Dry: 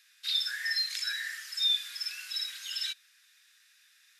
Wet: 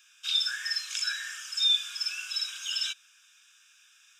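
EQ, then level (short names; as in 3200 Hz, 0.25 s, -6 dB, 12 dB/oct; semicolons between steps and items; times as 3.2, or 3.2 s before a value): fixed phaser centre 2900 Hz, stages 8; +7.0 dB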